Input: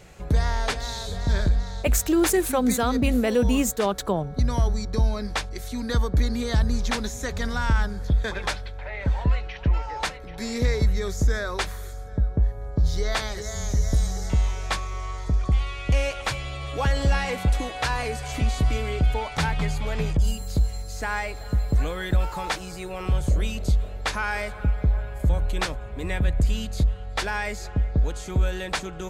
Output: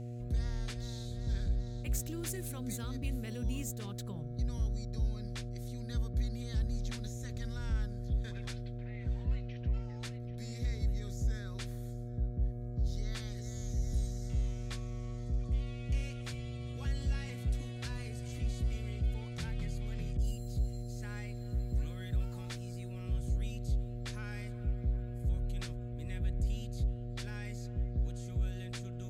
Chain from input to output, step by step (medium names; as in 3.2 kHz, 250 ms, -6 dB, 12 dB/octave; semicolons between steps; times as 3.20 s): amplifier tone stack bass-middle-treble 6-0-2; mains buzz 120 Hz, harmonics 6, -42 dBFS -8 dB/octave